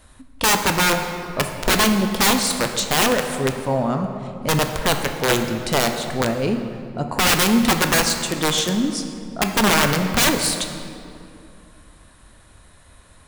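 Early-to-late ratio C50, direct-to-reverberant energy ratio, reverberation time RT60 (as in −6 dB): 6.5 dB, 5.0 dB, 2.5 s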